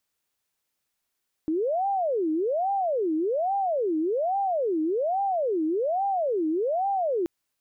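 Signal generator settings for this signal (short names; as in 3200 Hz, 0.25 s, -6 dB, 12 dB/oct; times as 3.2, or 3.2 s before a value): siren wail 310–797 Hz 1.2/s sine -22.5 dBFS 5.78 s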